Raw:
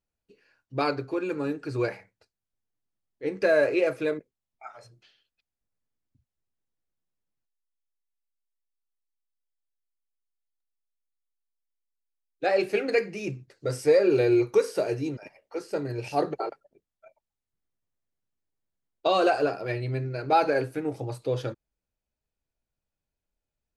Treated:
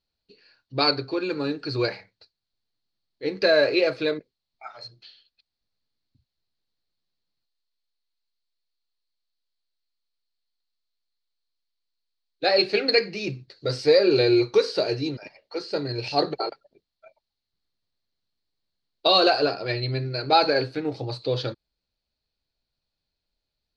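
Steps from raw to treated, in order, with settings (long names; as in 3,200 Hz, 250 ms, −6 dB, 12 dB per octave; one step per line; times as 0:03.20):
low-pass with resonance 4,300 Hz, resonance Q 8
level +2 dB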